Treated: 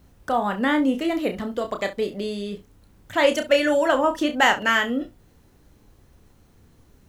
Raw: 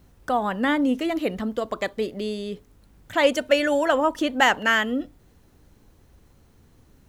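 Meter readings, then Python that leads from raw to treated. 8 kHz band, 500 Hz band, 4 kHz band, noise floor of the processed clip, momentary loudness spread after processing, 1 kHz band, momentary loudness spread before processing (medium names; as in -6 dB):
+1.0 dB, +1.0 dB, +1.0 dB, -57 dBFS, 11 LU, +1.0 dB, 11 LU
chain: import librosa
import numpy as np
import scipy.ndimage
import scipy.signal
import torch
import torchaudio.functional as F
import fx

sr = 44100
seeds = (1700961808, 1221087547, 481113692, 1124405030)

y = fx.room_early_taps(x, sr, ms=(30, 67), db=(-7.0, -16.5))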